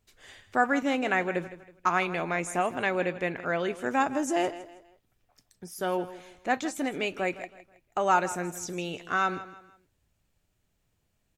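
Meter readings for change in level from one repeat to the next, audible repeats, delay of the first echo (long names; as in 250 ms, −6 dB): −9.0 dB, 3, 161 ms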